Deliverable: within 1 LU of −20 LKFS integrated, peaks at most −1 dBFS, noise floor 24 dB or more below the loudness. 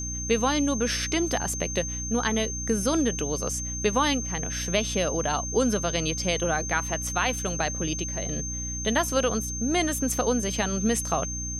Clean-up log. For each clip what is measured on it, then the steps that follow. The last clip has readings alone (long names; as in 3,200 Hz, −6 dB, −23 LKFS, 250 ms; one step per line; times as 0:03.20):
mains hum 60 Hz; hum harmonics up to 300 Hz; level of the hum −32 dBFS; interfering tone 6,300 Hz; level of the tone −32 dBFS; integrated loudness −26.0 LKFS; sample peak −10.0 dBFS; target loudness −20.0 LKFS
→ hum removal 60 Hz, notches 5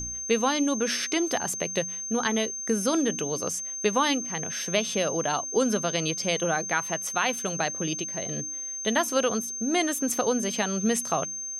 mains hum none found; interfering tone 6,300 Hz; level of the tone −32 dBFS
→ notch filter 6,300 Hz, Q 30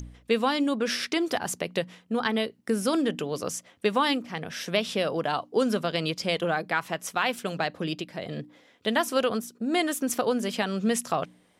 interfering tone none found; integrated loudness −28.0 LKFS; sample peak −11.0 dBFS; target loudness −20.0 LKFS
→ level +8 dB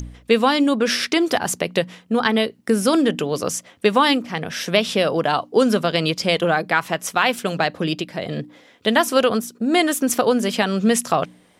integrated loudness −20.0 LKFS; sample peak −3.0 dBFS; background noise floor −54 dBFS